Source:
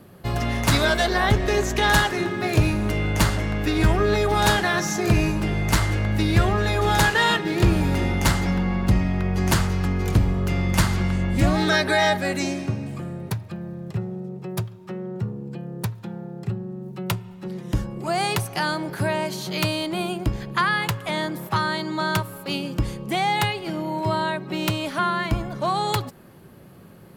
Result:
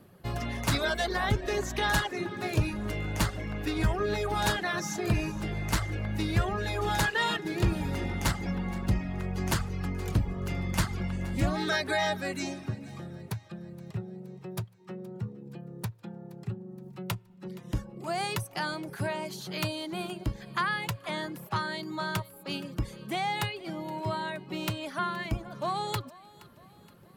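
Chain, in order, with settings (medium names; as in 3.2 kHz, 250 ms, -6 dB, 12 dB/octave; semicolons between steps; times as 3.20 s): reverb removal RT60 0.62 s; thinning echo 471 ms, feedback 53%, level -20.5 dB; trim -7.5 dB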